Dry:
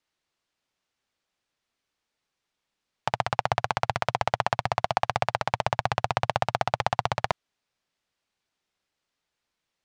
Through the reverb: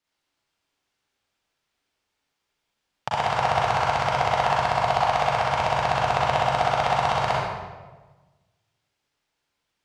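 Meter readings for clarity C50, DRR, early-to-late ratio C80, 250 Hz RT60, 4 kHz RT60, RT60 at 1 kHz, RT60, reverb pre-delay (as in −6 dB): −2.5 dB, −6.5 dB, 0.5 dB, 1.5 s, 0.90 s, 1.2 s, 1.3 s, 35 ms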